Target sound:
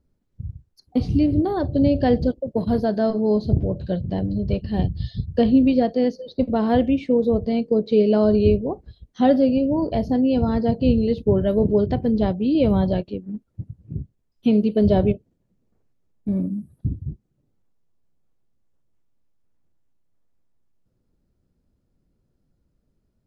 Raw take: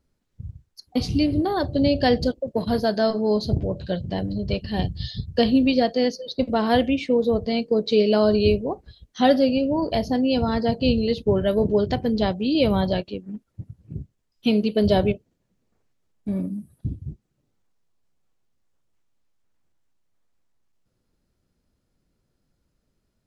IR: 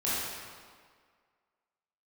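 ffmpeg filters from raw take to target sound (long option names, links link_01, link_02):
-filter_complex "[0:a]acrossover=split=3900[link_01][link_02];[link_02]acompressor=threshold=-43dB:ratio=4:attack=1:release=60[link_03];[link_01][link_03]amix=inputs=2:normalize=0,tiltshelf=frequency=790:gain=6,volume=-2dB"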